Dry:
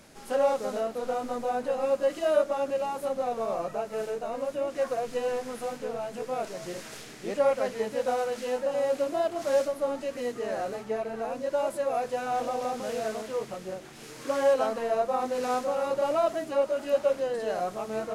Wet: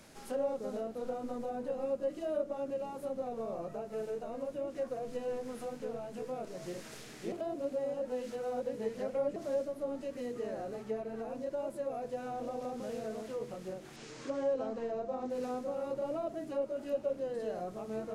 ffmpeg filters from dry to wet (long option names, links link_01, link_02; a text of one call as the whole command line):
ffmpeg -i in.wav -filter_complex "[0:a]asettb=1/sr,asplit=3[link_01][link_02][link_03];[link_01]atrim=end=13.964[link_04];[link_02]atrim=start=13.96:end=15.3,asetpts=PTS-STARTPTS,afade=type=in:duration=0.004:curve=qsin,afade=type=out:start_time=1.336:duration=0.004:curve=qsin,lowpass=frequency=7700:width=0.5412,lowpass=frequency=7700:width=1.3066[link_05];[link_03]atrim=start=15.296[link_06];[link_04][link_05]acrossfade=duration=0.004:curve1=hsin:curve2=qsin[link_07];[link_07][link_06]acrossfade=duration=0.004:curve1=qsin:curve2=hsin,asplit=3[link_08][link_09][link_10];[link_08]atrim=end=7.322[link_11];[link_09]atrim=start=7.318:end=9.362,asetpts=PTS-STARTPTS,areverse[link_12];[link_10]atrim=start=9.358[link_13];[link_11][link_12]acrossfade=duration=0.004:curve1=hsin:curve2=hsin[link_14];[link_14][link_13]acrossfade=duration=0.004:curve1=hsin:curve2=hsin,acrossover=split=480[link_15][link_16];[link_16]acompressor=threshold=-46dB:ratio=3[link_17];[link_15][link_17]amix=inputs=2:normalize=0,bandreject=frequency=97.82:width_type=h:width=4,bandreject=frequency=195.64:width_type=h:width=4,bandreject=frequency=293.46:width_type=h:width=4,bandreject=frequency=391.28:width_type=h:width=4,bandreject=frequency=489.1:width_type=h:width=4,bandreject=frequency=586.92:width_type=h:width=4,bandreject=frequency=684.74:width_type=h:width=4,bandreject=frequency=782.56:width_type=h:width=4,bandreject=frequency=880.38:width_type=h:width=4,bandreject=frequency=978.2:width_type=h:width=4,bandreject=frequency=1076.02:width_type=h:width=4,bandreject=frequency=1173.84:width_type=h:width=4,bandreject=frequency=1271.66:width_type=h:width=4,bandreject=frequency=1369.48:width_type=h:width=4,bandreject=frequency=1467.3:width_type=h:width=4,bandreject=frequency=1565.12:width_type=h:width=4,bandreject=frequency=1662.94:width_type=h:width=4,bandreject=frequency=1760.76:width_type=h:width=4,bandreject=frequency=1858.58:width_type=h:width=4,bandreject=frequency=1956.4:width_type=h:width=4,bandreject=frequency=2054.22:width_type=h:width=4,bandreject=frequency=2152.04:width_type=h:width=4,bandreject=frequency=2249.86:width_type=h:width=4,bandreject=frequency=2347.68:width_type=h:width=4,bandreject=frequency=2445.5:width_type=h:width=4,bandreject=frequency=2543.32:width_type=h:width=4,bandreject=frequency=2641.14:width_type=h:width=4,bandreject=frequency=2738.96:width_type=h:width=4,bandreject=frequency=2836.78:width_type=h:width=4,bandreject=frequency=2934.6:width_type=h:width=4,bandreject=frequency=3032.42:width_type=h:width=4,bandreject=frequency=3130.24:width_type=h:width=4,bandreject=frequency=3228.06:width_type=h:width=4,bandreject=frequency=3325.88:width_type=h:width=4,volume=-2.5dB" out.wav